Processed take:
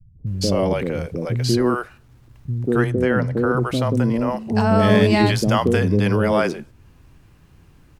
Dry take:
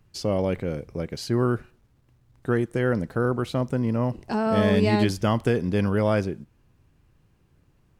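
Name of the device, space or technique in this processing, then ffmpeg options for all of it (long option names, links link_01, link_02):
parallel compression: -filter_complex "[0:a]asplit=2[link_01][link_02];[link_02]acompressor=threshold=-41dB:ratio=6,volume=0dB[link_03];[link_01][link_03]amix=inputs=2:normalize=0,asettb=1/sr,asplit=3[link_04][link_05][link_06];[link_04]atrim=end=2.634[link_07];[link_05]atrim=start=2.63:end=3.3,asetpts=PTS-STARTPTS,afade=type=in:duration=0.004:curve=qsin,afade=type=out:start_time=0.666:duration=0.004:curve=qsin,highshelf=frequency=5300:gain=-10.5[link_08];[link_06]atrim=start=3.296[link_09];[link_07][link_08]acrossfade=duration=0.004:curve1=hsin:curve2=qsin[link_10];[link_10][link_09]acrossfade=duration=0.004:curve1=qsin:curve2=hsin,acrossover=split=160|500[link_11][link_12][link_13];[link_12]adelay=190[link_14];[link_13]adelay=270[link_15];[link_11][link_14][link_15]amix=inputs=3:normalize=0,volume=6.5dB"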